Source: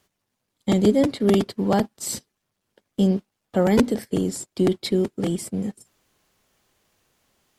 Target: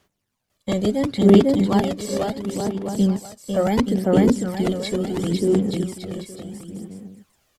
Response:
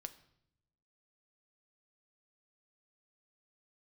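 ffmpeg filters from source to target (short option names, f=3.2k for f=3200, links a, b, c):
-filter_complex "[0:a]aecho=1:1:500|875|1156|1367|1525:0.631|0.398|0.251|0.158|0.1,aphaser=in_gain=1:out_gain=1:delay=1.8:decay=0.49:speed=0.72:type=sinusoidal,acrossover=split=5500[a][b];[b]acompressor=threshold=-37dB:ratio=4:attack=1:release=60[c];[a][c]amix=inputs=2:normalize=0,volume=-1.5dB"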